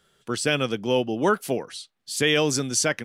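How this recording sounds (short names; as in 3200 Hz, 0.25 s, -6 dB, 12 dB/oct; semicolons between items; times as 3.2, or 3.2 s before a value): noise floor -76 dBFS; spectral tilt -3.0 dB/oct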